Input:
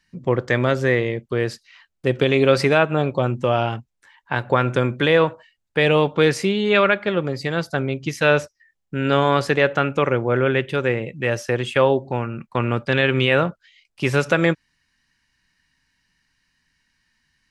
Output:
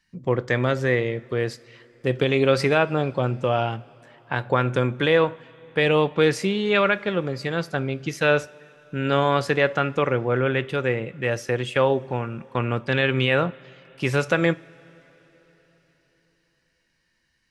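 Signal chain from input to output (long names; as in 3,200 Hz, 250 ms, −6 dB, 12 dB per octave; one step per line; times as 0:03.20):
coupled-rooms reverb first 0.31 s, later 4.3 s, from −18 dB, DRR 15.5 dB
level −3 dB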